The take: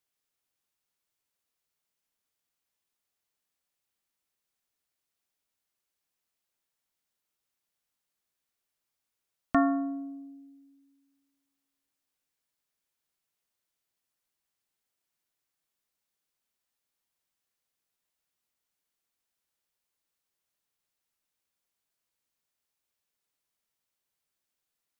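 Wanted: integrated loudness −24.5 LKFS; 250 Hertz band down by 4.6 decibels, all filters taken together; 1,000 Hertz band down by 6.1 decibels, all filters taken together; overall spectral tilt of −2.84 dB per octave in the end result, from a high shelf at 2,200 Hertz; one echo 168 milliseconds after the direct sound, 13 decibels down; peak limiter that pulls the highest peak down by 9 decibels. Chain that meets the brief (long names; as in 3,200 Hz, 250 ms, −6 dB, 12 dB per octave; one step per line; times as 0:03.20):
parametric band 250 Hz −4.5 dB
parametric band 1,000 Hz −7.5 dB
high-shelf EQ 2,200 Hz −9 dB
brickwall limiter −26 dBFS
single-tap delay 168 ms −13 dB
level +14.5 dB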